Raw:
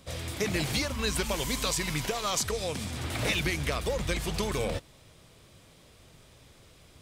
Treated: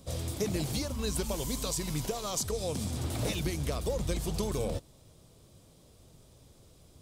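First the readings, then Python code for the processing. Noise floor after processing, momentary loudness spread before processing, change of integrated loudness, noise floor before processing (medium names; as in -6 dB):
-59 dBFS, 6 LU, -3.0 dB, -57 dBFS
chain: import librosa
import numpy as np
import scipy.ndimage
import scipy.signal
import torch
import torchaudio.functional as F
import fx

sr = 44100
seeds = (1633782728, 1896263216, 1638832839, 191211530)

y = fx.peak_eq(x, sr, hz=2000.0, db=-13.0, octaves=1.8)
y = fx.rider(y, sr, range_db=4, speed_s=0.5)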